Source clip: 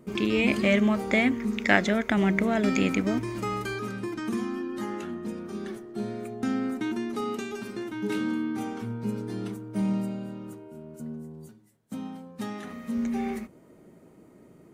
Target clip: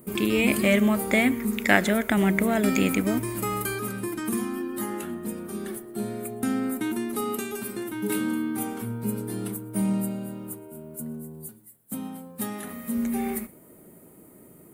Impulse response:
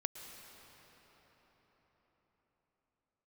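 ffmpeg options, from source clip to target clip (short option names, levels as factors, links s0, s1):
-filter_complex "[0:a]aexciter=amount=7.4:drive=7.5:freq=8500,asplit=2[s0][s1];[1:a]atrim=start_sample=2205,afade=t=out:st=0.18:d=0.01,atrim=end_sample=8379[s2];[s1][s2]afir=irnorm=-1:irlink=0,volume=0.708[s3];[s0][s3]amix=inputs=2:normalize=0,volume=0.75"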